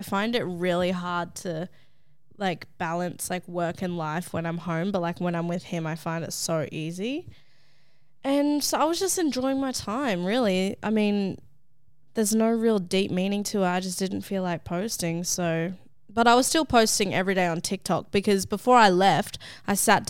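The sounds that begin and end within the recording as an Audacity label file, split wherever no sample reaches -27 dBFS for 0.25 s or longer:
2.410000	7.190000	sound
8.250000	11.330000	sound
12.170000	15.700000	sound
16.170000	19.350000	sound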